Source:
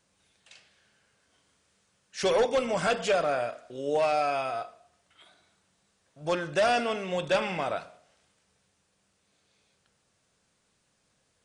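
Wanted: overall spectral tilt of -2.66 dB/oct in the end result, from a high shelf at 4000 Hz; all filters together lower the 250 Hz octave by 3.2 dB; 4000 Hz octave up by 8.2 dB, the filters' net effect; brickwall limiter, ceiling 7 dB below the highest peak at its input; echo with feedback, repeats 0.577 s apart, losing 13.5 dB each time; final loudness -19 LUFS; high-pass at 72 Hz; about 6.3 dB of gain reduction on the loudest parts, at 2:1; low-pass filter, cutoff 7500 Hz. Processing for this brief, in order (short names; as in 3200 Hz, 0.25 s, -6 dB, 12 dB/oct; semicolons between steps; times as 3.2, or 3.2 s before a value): HPF 72 Hz; LPF 7500 Hz; bell 250 Hz -4.5 dB; high shelf 4000 Hz +7 dB; bell 4000 Hz +7 dB; compressor 2:1, threshold -31 dBFS; limiter -24 dBFS; feedback echo 0.577 s, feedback 21%, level -13.5 dB; gain +15.5 dB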